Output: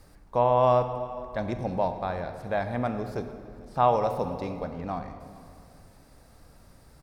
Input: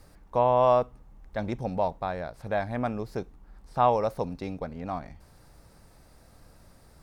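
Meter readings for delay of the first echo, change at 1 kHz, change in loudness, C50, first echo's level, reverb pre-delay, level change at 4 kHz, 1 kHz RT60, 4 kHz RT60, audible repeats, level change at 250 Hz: 448 ms, +0.5 dB, +0.5 dB, 8.5 dB, -23.5 dB, 23 ms, +0.5 dB, 2.2 s, 1.7 s, 1, +1.0 dB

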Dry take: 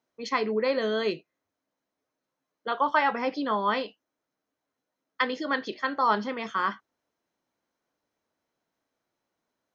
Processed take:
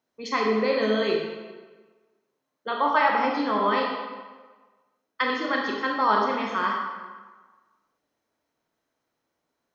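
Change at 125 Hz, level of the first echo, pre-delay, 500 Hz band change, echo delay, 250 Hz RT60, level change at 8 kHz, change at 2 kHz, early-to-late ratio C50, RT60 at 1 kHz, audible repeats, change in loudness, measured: no reading, no echo, 24 ms, +3.5 dB, no echo, 1.2 s, no reading, +3.0 dB, 1.5 dB, 1.4 s, no echo, +3.0 dB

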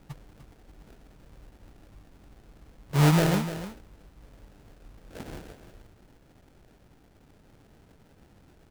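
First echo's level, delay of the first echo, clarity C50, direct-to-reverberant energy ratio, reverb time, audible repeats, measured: -12.0 dB, 298 ms, no reverb, no reverb, no reverb, 1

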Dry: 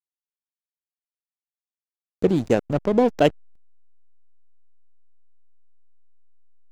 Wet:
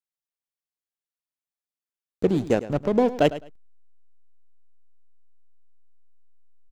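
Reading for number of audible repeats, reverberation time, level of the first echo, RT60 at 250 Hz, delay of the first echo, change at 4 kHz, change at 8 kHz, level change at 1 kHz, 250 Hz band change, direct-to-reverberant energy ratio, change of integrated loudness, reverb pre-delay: 2, no reverb, -15.0 dB, no reverb, 105 ms, -2.0 dB, no reading, -2.0 dB, -2.0 dB, no reverb, -2.0 dB, no reverb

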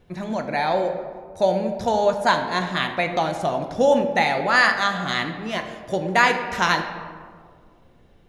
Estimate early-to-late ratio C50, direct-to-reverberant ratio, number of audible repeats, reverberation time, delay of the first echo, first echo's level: 7.5 dB, 5.0 dB, no echo, 1.9 s, no echo, no echo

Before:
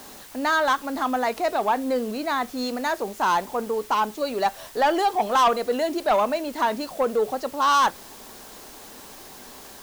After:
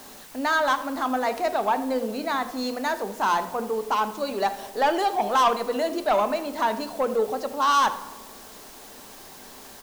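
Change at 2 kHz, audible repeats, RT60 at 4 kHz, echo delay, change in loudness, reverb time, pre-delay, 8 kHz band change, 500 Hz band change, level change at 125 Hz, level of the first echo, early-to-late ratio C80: -1.0 dB, 1, 0.70 s, 80 ms, -1.0 dB, 1.3 s, 4 ms, -1.5 dB, -1.0 dB, no reading, -17.0 dB, 14.0 dB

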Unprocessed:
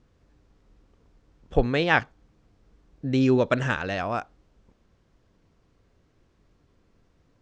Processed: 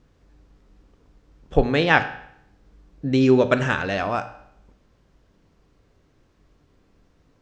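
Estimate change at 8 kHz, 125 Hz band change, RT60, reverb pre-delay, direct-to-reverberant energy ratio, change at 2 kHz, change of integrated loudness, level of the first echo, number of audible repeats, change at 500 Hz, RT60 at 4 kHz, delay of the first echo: no reading, +2.5 dB, 0.70 s, 7 ms, 9.5 dB, +4.0 dB, +4.0 dB, no echo, no echo, +4.5 dB, 0.65 s, no echo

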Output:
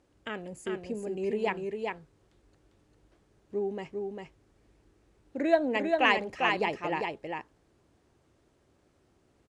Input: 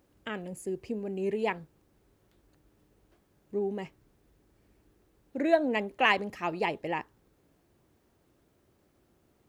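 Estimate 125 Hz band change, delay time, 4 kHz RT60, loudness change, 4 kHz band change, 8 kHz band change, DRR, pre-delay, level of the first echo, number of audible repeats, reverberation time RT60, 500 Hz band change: -1.5 dB, 399 ms, no reverb, +0.5 dB, +1.5 dB, no reading, no reverb, no reverb, -4.0 dB, 1, no reverb, +1.5 dB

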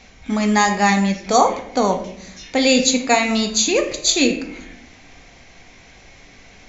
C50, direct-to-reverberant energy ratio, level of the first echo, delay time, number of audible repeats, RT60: 9.0 dB, 4.0 dB, no echo, no echo, no echo, 0.70 s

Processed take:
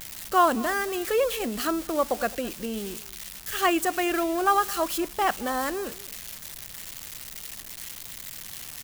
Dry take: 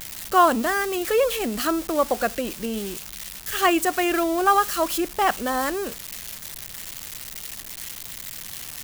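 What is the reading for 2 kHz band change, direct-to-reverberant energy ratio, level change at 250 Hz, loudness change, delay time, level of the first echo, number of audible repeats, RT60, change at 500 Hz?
-3.5 dB, no reverb, -3.5 dB, -3.5 dB, 215 ms, -20.0 dB, 1, no reverb, -3.5 dB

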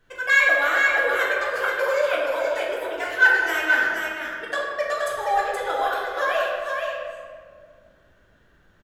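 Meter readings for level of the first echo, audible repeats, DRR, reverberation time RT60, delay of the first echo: -4.5 dB, 1, -6.0 dB, 1.9 s, 475 ms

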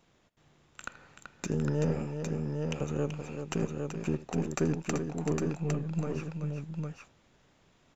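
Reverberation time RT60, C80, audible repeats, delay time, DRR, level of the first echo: no reverb, no reverb, 3, 80 ms, no reverb, -17.5 dB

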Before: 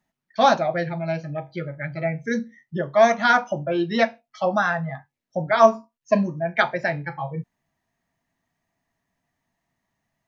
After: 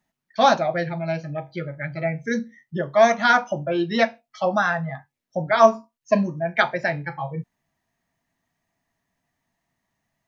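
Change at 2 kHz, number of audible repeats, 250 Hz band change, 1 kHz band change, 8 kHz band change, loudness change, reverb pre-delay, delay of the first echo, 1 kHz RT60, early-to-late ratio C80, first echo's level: +0.5 dB, no echo, 0.0 dB, +0.5 dB, no reading, +0.5 dB, no reverb, no echo, no reverb, no reverb, no echo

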